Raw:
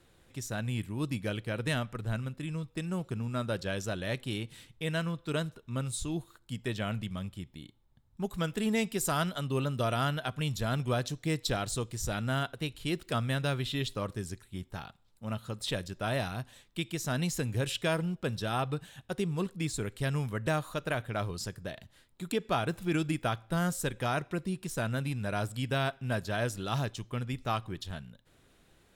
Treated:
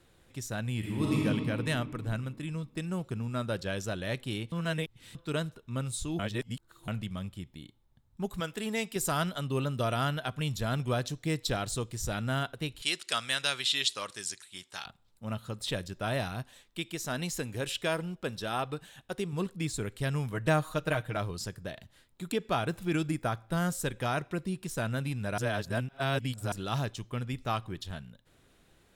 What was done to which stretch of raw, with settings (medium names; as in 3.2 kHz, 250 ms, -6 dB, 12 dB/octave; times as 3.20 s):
0.78–1.21 s: reverb throw, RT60 2.6 s, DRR -5.5 dB
4.52–5.15 s: reverse
6.19–6.88 s: reverse
8.40–8.96 s: bass shelf 240 Hz -11 dB
12.82–14.86 s: frequency weighting ITU-R 468
16.42–19.33 s: peaking EQ 110 Hz -7.5 dB 1.7 oct
20.32–21.17 s: comb 6.4 ms
23.09–23.49 s: peaking EQ 3 kHz -8.5 dB 0.64 oct
25.38–26.52 s: reverse